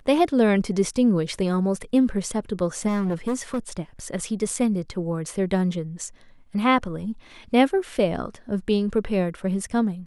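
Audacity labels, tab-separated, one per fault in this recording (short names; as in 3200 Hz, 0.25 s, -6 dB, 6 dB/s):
2.870000	3.800000	clipped -20.5 dBFS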